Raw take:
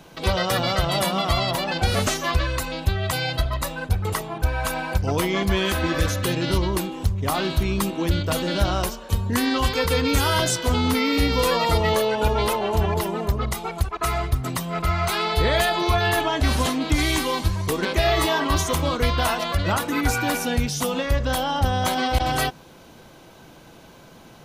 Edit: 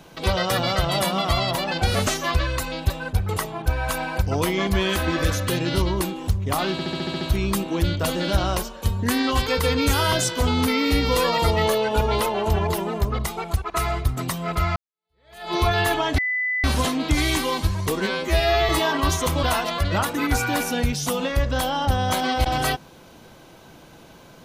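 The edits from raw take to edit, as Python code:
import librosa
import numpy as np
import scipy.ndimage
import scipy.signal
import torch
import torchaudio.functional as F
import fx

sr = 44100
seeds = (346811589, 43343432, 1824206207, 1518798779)

y = fx.edit(x, sr, fx.cut(start_s=2.9, length_s=0.76),
    fx.stutter(start_s=7.48, slice_s=0.07, count=8),
    fx.fade_in_span(start_s=15.03, length_s=0.78, curve='exp'),
    fx.insert_tone(at_s=16.45, length_s=0.46, hz=2000.0, db=-21.0),
    fx.stretch_span(start_s=17.82, length_s=0.34, factor=2.0),
    fx.cut(start_s=18.9, length_s=0.27), tone=tone)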